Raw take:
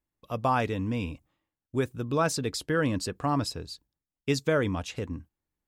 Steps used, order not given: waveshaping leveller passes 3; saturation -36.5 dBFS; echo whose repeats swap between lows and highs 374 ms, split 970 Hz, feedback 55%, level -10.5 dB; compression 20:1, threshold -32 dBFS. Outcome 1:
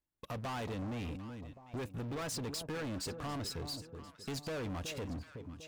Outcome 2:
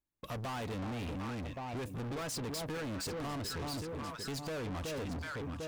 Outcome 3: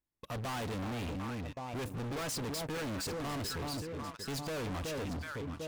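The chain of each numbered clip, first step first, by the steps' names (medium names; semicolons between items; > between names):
waveshaping leveller > compression > echo whose repeats swap between lows and highs > saturation; echo whose repeats swap between lows and highs > compression > saturation > waveshaping leveller; echo whose repeats swap between lows and highs > waveshaping leveller > saturation > compression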